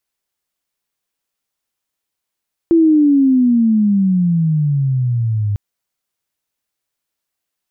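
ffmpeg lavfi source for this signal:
ffmpeg -f lavfi -i "aevalsrc='pow(10,(-7-7.5*t/2.85)/20)*sin(2*PI*338*2.85/(-21*log(2)/12)*(exp(-21*log(2)/12*t/2.85)-1))':duration=2.85:sample_rate=44100" out.wav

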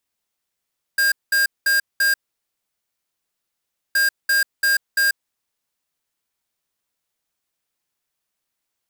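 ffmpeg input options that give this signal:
ffmpeg -f lavfi -i "aevalsrc='0.141*(2*lt(mod(1610*t,1),0.5)-1)*clip(min(mod(mod(t,2.97),0.34),0.14-mod(mod(t,2.97),0.34))/0.005,0,1)*lt(mod(t,2.97),1.36)':duration=5.94:sample_rate=44100" out.wav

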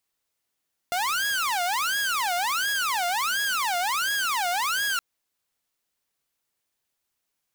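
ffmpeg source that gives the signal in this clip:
ffmpeg -f lavfi -i "aevalsrc='0.0891*(2*mod((1179*t-481/(2*PI*1.4)*sin(2*PI*1.4*t)),1)-1)':duration=4.07:sample_rate=44100" out.wav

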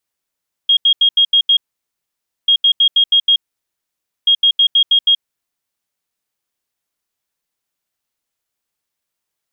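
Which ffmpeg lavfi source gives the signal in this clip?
ffmpeg -f lavfi -i "aevalsrc='0.422*sin(2*PI*3260*t)*clip(min(mod(mod(t,1.79),0.16),0.08-mod(mod(t,1.79),0.16))/0.005,0,1)*lt(mod(t,1.79),0.96)':duration=5.37:sample_rate=44100" out.wav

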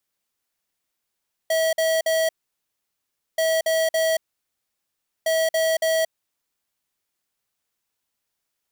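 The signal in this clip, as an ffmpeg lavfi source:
ffmpeg -f lavfi -i "aevalsrc='0.0944*(2*lt(mod(646*t,1),0.5)-1)*clip(min(mod(mod(t,1.88),0.28),0.23-mod(mod(t,1.88),0.28))/0.005,0,1)*lt(mod(t,1.88),0.84)':duration=5.64:sample_rate=44100" out.wav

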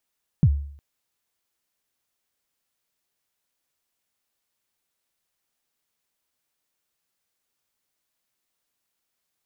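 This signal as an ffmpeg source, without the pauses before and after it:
ffmpeg -f lavfi -i "aevalsrc='0.316*pow(10,-3*t/0.59)*sin(2*PI*(180*0.059/log(71/180)*(exp(log(71/180)*min(t,0.059)/0.059)-1)+71*max(t-0.059,0)))':duration=0.36:sample_rate=44100" out.wav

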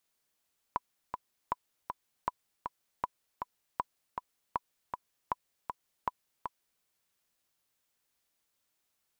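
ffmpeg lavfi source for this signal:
ffmpeg -f lavfi -i "aevalsrc='pow(10,(-16.5-5.5*gte(mod(t,2*60/158),60/158))/20)*sin(2*PI*993*mod(t,60/158))*exp(-6.91*mod(t,60/158)/0.03)':duration=6.07:sample_rate=44100" out.wav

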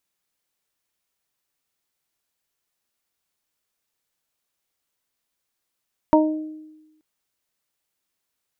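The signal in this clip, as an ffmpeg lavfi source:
ffmpeg -f lavfi -i "aevalsrc='0.237*pow(10,-3*t/1.1)*sin(2*PI*310*t)+0.211*pow(10,-3*t/0.54)*sin(2*PI*620*t)+0.237*pow(10,-3*t/0.25)*sin(2*PI*930*t)':duration=0.88:sample_rate=44100" out.wav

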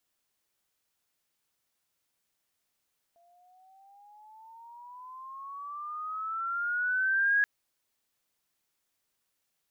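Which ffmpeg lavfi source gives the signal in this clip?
ffmpeg -f lavfi -i "aevalsrc='pow(10,(-21+39.5*(t/4.28-1))/20)*sin(2*PI*681*4.28/(15.5*log(2)/12)*(exp(15.5*log(2)/12*t/4.28)-1))':duration=4.28:sample_rate=44100" out.wav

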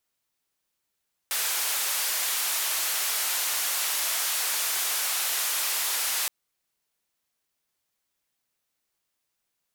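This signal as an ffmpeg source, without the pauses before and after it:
ffmpeg -f lavfi -i "anoisesrc=color=white:duration=4.97:sample_rate=44100:seed=1,highpass=frequency=760,lowpass=frequency=16000,volume=-21dB" out.wav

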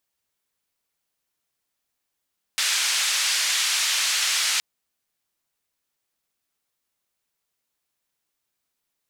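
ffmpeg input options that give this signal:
ffmpeg -f lavfi -i "anoisesrc=color=white:duration=2.02:sample_rate=44100:seed=1,highpass=frequency=1700,lowpass=frequency=6500,volume=-11.7dB" out.wav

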